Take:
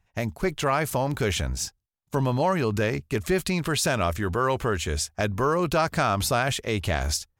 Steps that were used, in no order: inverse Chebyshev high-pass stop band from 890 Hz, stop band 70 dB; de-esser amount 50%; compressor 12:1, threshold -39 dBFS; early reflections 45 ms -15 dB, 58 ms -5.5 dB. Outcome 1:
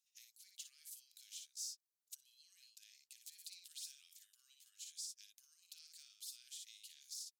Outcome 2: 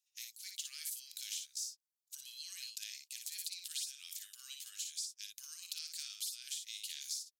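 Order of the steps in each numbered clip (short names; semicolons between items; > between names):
de-esser > early reflections > compressor > inverse Chebyshev high-pass; inverse Chebyshev high-pass > compressor > de-esser > early reflections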